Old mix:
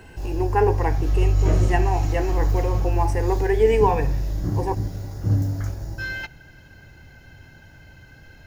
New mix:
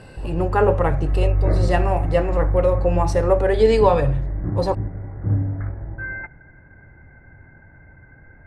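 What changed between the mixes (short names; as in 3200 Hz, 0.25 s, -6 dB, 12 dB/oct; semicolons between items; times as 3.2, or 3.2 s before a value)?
speech: remove fixed phaser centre 860 Hz, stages 8; background: add steep low-pass 2200 Hz 96 dB/oct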